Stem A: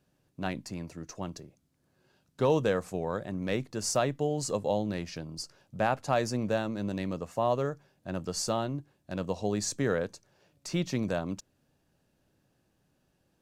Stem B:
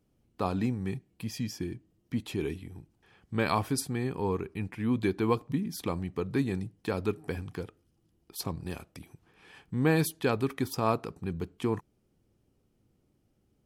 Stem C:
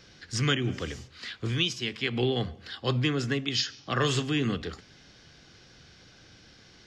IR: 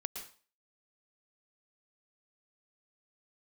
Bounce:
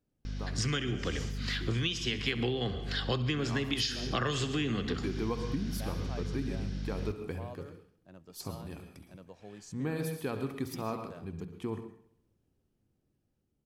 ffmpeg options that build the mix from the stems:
-filter_complex "[0:a]volume=-20dB,asplit=3[link_01][link_02][link_03];[link_02]volume=-14dB[link_04];[1:a]lowshelf=frequency=320:gain=4.5,bandreject=frequency=60:width_type=h:width=6,bandreject=frequency=120:width_type=h:width=6,bandreject=frequency=180:width_type=h:width=6,dynaudnorm=framelen=590:gausssize=9:maxgain=11.5dB,volume=-15dB,asplit=3[link_05][link_06][link_07];[link_06]volume=-5dB[link_08];[link_07]volume=-15dB[link_09];[2:a]dynaudnorm=framelen=300:gausssize=9:maxgain=4.5dB,aeval=exprs='val(0)+0.0141*(sin(2*PI*50*n/s)+sin(2*PI*2*50*n/s)/2+sin(2*PI*3*50*n/s)/3+sin(2*PI*4*50*n/s)/4+sin(2*PI*5*50*n/s)/5)':channel_layout=same,adelay=250,volume=0dB,asplit=3[link_10][link_11][link_12];[link_11]volume=-9.5dB[link_13];[link_12]volume=-14.5dB[link_14];[link_03]apad=whole_len=602340[link_15];[link_05][link_15]sidechaincompress=threshold=-55dB:ratio=8:attack=16:release=1100[link_16];[3:a]atrim=start_sample=2205[link_17];[link_04][link_08][link_13]amix=inputs=3:normalize=0[link_18];[link_18][link_17]afir=irnorm=-1:irlink=0[link_19];[link_09][link_14]amix=inputs=2:normalize=0,aecho=0:1:67|134|201|268|335|402|469|536|603:1|0.58|0.336|0.195|0.113|0.0656|0.0381|0.0221|0.0128[link_20];[link_01][link_16][link_10][link_19][link_20]amix=inputs=5:normalize=0,acompressor=threshold=-28dB:ratio=10"

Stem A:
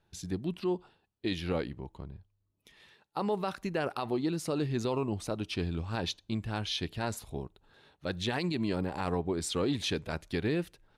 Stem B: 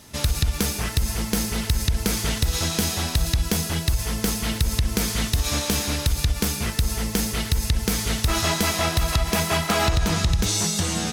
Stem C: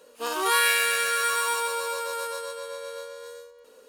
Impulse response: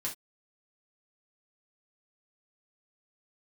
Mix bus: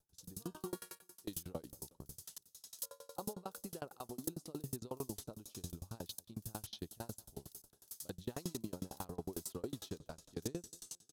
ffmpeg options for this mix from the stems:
-filter_complex "[0:a]equalizer=frequency=1700:width_type=o:width=0.23:gain=-3.5,volume=-4.5dB,asplit=2[link_01][link_02];[link_02]volume=-22dB[link_03];[1:a]aderivative,aeval=exprs='val(0)*pow(10,-21*if(lt(mod(-2.1*n/s,1),2*abs(-2.1)/1000),1-mod(-2.1*n/s,1)/(2*abs(-2.1)/1000),(mod(-2.1*n/s,1)-2*abs(-2.1)/1000)/(1-2*abs(-2.1)/1000))/20)':channel_layout=same,volume=-8dB[link_04];[2:a]acompressor=threshold=-34dB:ratio=3,adelay=200,volume=-13dB,asplit=3[link_05][link_06][link_07];[link_05]atrim=end=0.99,asetpts=PTS-STARTPTS,afade=type=out:start_time=0.986:duration=0.004:curve=hsin[link_08];[link_06]atrim=start=0.99:end=2.83,asetpts=PTS-STARTPTS,volume=0[link_09];[link_07]atrim=start=2.83,asetpts=PTS-STARTPTS,afade=type=in:duration=0.004:curve=hsin[link_10];[link_08][link_09][link_10]concat=n=3:v=0:a=1,asplit=3[link_11][link_12][link_13];[link_12]volume=-5.5dB[link_14];[link_13]volume=-15.5dB[link_15];[3:a]atrim=start_sample=2205[link_16];[link_14][link_16]afir=irnorm=-1:irlink=0[link_17];[link_03][link_15]amix=inputs=2:normalize=0,aecho=0:1:193|386|579|772|965|1158|1351|1544:1|0.56|0.314|0.176|0.0983|0.0551|0.0308|0.0173[link_18];[link_01][link_04][link_11][link_17][link_18]amix=inputs=5:normalize=0,equalizer=frequency=2200:width_type=o:width=0.92:gain=-13,aeval=exprs='val(0)*pow(10,-32*if(lt(mod(11*n/s,1),2*abs(11)/1000),1-mod(11*n/s,1)/(2*abs(11)/1000),(mod(11*n/s,1)-2*abs(11)/1000)/(1-2*abs(11)/1000))/20)':channel_layout=same"

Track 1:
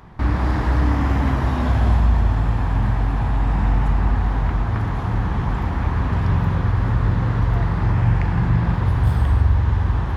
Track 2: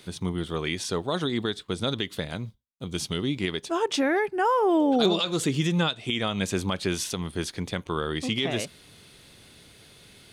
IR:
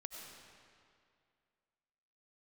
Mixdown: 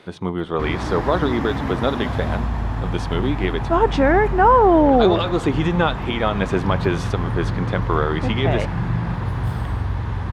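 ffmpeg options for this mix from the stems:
-filter_complex "[0:a]equalizer=frequency=68:width_type=o:width=0.77:gain=-9.5,adelay=400,volume=-2dB[link_01];[1:a]lowpass=frequency=1800:poles=1,equalizer=frequency=900:width=0.35:gain=11.5,volume=-0.5dB,asplit=2[link_02][link_03];[link_03]volume=-18.5dB[link_04];[2:a]atrim=start_sample=2205[link_05];[link_04][link_05]afir=irnorm=-1:irlink=0[link_06];[link_01][link_02][link_06]amix=inputs=3:normalize=0"

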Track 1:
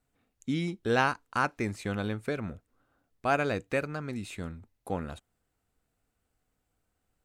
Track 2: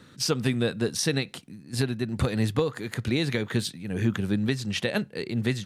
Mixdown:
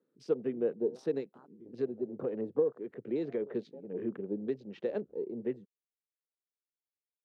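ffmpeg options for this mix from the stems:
ffmpeg -i stem1.wav -i stem2.wav -filter_complex "[0:a]alimiter=limit=-20.5dB:level=0:latency=1:release=434,acrusher=samples=8:mix=1:aa=0.000001,volume=-9dB[link_01];[1:a]highpass=frequency=140:width=0.5412,highpass=frequency=140:width=1.3066,volume=-0.5dB,asplit=2[link_02][link_03];[link_03]apad=whole_len=319328[link_04];[link_01][link_04]sidechaincompress=threshold=-31dB:ratio=8:attack=40:release=313[link_05];[link_05][link_02]amix=inputs=2:normalize=0,afwtdn=0.0141,bandpass=frequency=430:width_type=q:width=2.7:csg=0" out.wav

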